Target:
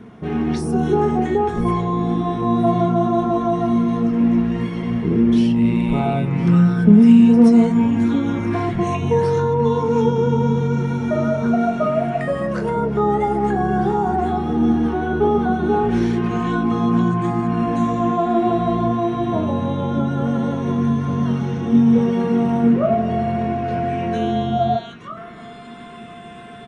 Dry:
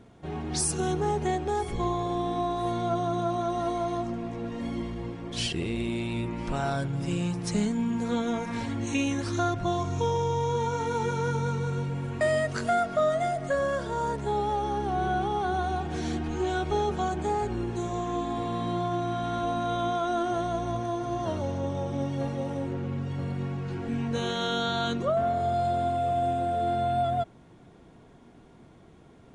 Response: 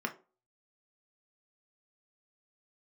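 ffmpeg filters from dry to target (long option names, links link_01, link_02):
-filter_complex "[0:a]acrossover=split=980[link_01][link_02];[link_01]atempo=1.1[link_03];[link_02]acompressor=threshold=-43dB:ratio=6[link_04];[link_03][link_04]amix=inputs=2:normalize=0[link_05];[1:a]atrim=start_sample=2205[link_06];[link_05][link_06]afir=irnorm=-1:irlink=0,volume=7.5dB"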